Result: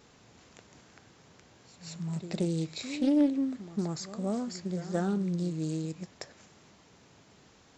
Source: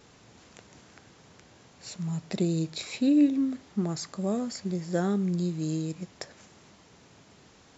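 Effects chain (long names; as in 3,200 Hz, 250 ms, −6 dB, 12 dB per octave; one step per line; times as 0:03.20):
backwards echo 178 ms −13.5 dB
highs frequency-modulated by the lows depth 0.24 ms
level −3 dB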